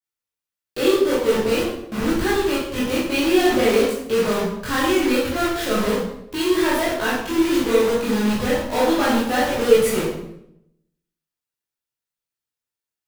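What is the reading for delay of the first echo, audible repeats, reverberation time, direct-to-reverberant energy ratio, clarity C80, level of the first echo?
none, none, 0.75 s, -8.5 dB, 5.0 dB, none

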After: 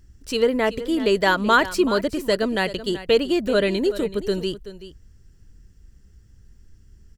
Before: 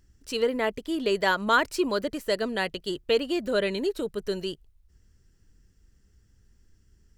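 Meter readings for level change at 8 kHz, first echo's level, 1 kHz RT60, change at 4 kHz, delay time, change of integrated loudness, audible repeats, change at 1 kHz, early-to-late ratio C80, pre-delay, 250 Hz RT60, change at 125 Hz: +4.5 dB, -14.5 dB, none, +4.5 dB, 0.379 s, +5.5 dB, 1, +5.0 dB, none, none, none, +8.5 dB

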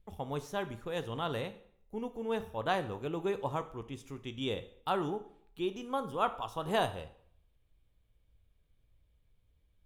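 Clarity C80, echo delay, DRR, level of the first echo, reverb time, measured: 17.5 dB, none, 10.0 dB, none, 0.60 s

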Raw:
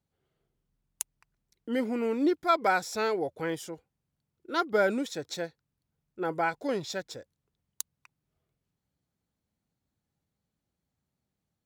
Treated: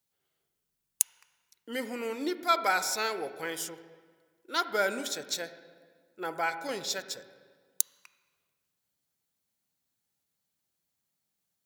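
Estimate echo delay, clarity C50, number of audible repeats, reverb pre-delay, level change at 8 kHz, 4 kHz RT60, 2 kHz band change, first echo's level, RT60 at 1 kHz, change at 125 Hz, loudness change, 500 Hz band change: none, 12.0 dB, none, 14 ms, +8.5 dB, 1.3 s, +0.5 dB, none, 1.6 s, -10.0 dB, -1.0 dB, -5.0 dB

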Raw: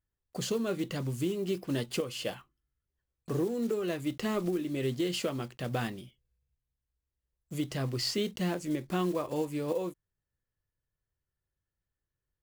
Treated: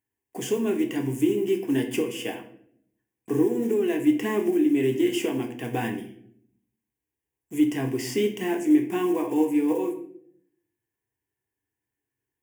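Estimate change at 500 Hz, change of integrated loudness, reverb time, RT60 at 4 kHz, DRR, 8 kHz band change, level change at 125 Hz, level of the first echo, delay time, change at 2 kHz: +7.5 dB, +8.0 dB, 0.65 s, 0.45 s, 4.5 dB, +3.5 dB, 0.0 dB, none, none, +6.0 dB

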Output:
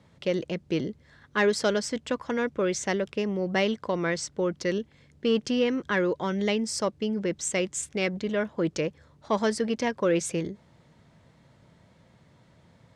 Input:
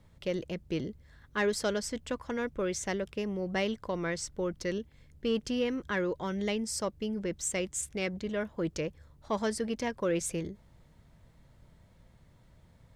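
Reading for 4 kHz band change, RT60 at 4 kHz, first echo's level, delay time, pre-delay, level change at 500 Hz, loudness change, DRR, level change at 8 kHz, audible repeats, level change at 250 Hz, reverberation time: +5.5 dB, none, none, none, none, +6.0 dB, +5.5 dB, none, +3.0 dB, none, +5.5 dB, none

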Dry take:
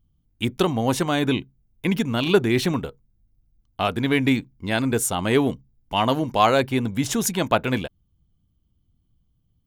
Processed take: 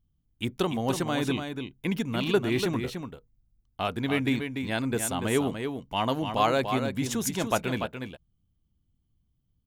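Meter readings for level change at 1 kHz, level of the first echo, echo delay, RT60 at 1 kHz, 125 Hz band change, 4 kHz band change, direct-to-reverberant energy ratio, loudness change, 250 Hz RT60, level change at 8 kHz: -6.0 dB, -7.0 dB, 0.291 s, none, -6.0 dB, -5.5 dB, none, -6.0 dB, none, -5.5 dB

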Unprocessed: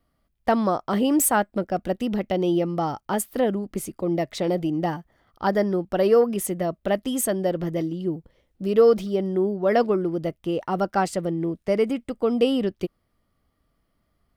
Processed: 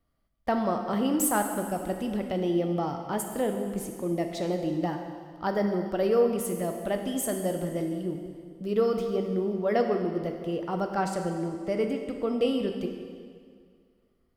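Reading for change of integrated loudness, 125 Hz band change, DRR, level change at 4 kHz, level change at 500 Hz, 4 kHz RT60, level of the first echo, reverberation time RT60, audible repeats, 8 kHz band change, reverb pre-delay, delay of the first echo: -5.0 dB, -4.0 dB, 4.0 dB, -5.0 dB, -5.5 dB, 1.9 s, none, 2.1 s, none, -5.0 dB, 11 ms, none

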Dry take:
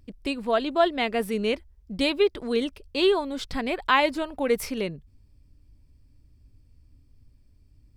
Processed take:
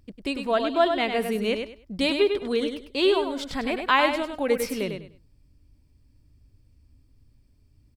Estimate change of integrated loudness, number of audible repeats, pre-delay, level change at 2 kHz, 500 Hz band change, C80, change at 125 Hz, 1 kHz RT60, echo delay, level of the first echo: +0.5 dB, 3, none, +1.0 dB, +1.0 dB, none, 0.0 dB, none, 0.1 s, -6.5 dB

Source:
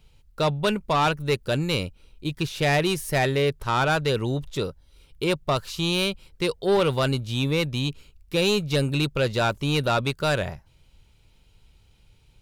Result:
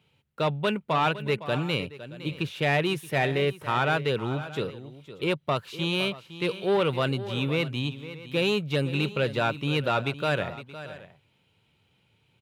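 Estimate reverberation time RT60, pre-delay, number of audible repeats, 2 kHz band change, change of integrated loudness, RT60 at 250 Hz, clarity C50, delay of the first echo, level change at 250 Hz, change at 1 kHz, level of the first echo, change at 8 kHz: none, none, 2, -1.5 dB, -3.0 dB, none, none, 0.51 s, -3.0 dB, -2.5 dB, -14.0 dB, -11.5 dB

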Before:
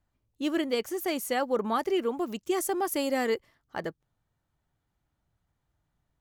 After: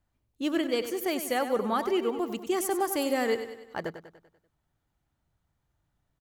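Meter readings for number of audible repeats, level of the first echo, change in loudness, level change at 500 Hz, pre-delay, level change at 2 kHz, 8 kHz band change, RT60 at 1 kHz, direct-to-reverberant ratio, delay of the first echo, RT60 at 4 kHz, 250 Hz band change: 5, -10.5 dB, +0.5 dB, +0.5 dB, none, +0.5 dB, +0.5 dB, none, none, 97 ms, none, +0.5 dB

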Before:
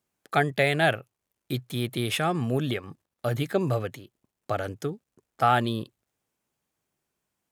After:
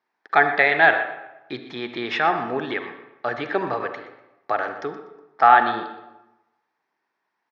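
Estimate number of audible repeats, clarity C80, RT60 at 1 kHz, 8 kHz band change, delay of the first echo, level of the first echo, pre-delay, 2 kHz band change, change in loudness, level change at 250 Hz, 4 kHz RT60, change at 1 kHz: 2, 9.0 dB, 1.0 s, under -15 dB, 0.122 s, -14.5 dB, 38 ms, +10.0 dB, +6.5 dB, -2.0 dB, 0.70 s, +9.0 dB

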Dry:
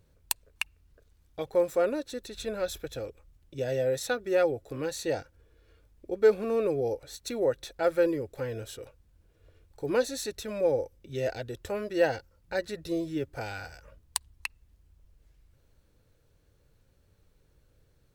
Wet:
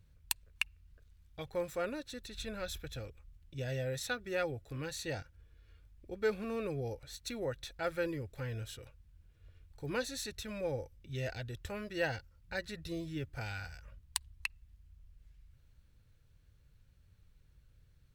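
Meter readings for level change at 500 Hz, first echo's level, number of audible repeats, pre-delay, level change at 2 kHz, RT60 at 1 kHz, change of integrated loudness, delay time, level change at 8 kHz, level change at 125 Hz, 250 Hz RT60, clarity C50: -11.5 dB, none, none, none, -3.0 dB, none, -9.0 dB, none, -5.5 dB, 0.0 dB, none, none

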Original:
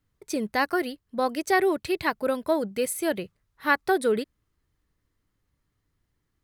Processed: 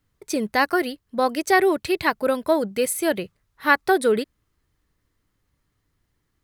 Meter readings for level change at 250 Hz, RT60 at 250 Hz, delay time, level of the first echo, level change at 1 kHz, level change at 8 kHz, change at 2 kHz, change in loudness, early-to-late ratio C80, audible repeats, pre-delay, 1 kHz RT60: +4.0 dB, none, none, none, +4.5 dB, +5.0 dB, +5.0 dB, +4.5 dB, none, none, none, none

